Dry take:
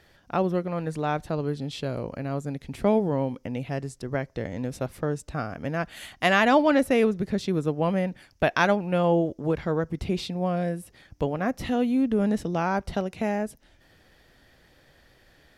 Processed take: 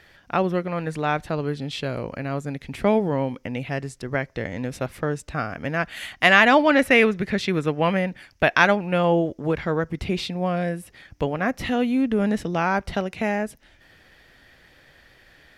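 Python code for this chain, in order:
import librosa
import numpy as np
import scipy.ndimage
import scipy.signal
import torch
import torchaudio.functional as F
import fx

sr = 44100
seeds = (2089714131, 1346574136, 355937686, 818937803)

y = fx.peak_eq(x, sr, hz=2100.0, db=fx.steps((0.0, 7.5), (6.79, 14.0), (7.97, 7.0)), octaves=1.6)
y = y * librosa.db_to_amplitude(1.5)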